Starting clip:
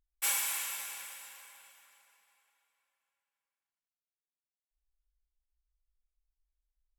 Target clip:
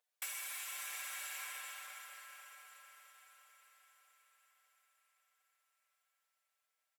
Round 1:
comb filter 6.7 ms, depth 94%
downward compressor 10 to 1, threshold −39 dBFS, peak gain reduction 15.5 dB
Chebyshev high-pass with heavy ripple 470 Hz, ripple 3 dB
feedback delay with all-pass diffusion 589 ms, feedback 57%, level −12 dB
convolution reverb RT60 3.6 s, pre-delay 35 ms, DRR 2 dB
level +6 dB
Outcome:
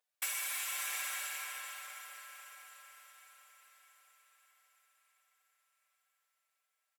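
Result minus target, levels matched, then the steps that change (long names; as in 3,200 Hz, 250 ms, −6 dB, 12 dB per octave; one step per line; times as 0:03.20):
downward compressor: peak gain reduction −6.5 dB
change: downward compressor 10 to 1, threshold −46 dBFS, peak gain reduction 22 dB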